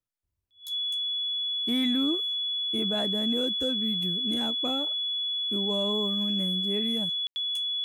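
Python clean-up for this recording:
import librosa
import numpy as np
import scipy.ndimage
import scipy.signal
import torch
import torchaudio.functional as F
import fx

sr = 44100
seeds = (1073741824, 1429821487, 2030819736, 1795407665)

y = fx.notch(x, sr, hz=3400.0, q=30.0)
y = fx.fix_ambience(y, sr, seeds[0], print_start_s=0.23, print_end_s=0.73, start_s=7.27, end_s=7.36)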